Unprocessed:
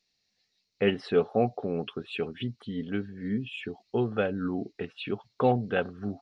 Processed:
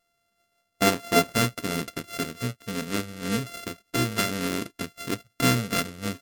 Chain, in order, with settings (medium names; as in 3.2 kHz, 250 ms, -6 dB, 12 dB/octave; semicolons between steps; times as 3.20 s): sorted samples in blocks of 64 samples; peaking EQ 770 Hz -4.5 dB 0.7 oct, from 1.31 s -14.5 dB; trim +5 dB; MP3 80 kbps 48 kHz